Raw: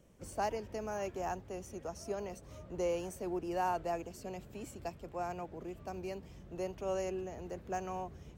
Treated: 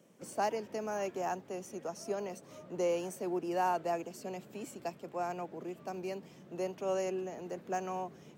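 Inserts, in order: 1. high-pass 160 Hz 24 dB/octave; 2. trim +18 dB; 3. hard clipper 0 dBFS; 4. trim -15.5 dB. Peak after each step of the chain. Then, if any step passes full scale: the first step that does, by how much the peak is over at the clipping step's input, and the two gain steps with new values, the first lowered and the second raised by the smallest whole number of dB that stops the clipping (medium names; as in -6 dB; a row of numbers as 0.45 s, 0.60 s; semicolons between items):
-24.0 dBFS, -6.0 dBFS, -6.0 dBFS, -21.5 dBFS; nothing clips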